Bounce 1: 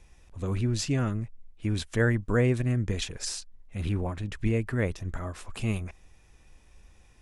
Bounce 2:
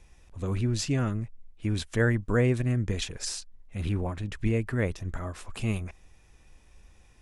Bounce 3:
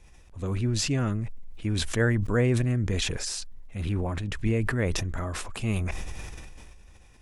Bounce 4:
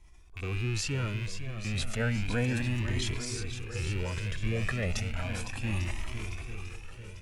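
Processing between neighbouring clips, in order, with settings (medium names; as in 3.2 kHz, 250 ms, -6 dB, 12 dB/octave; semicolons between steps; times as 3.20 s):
no audible change
decay stretcher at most 22 dB/s
rattle on loud lows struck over -37 dBFS, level -23 dBFS; shuffle delay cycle 846 ms, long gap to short 1.5:1, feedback 44%, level -9 dB; Shepard-style flanger rising 0.33 Hz; trim -1.5 dB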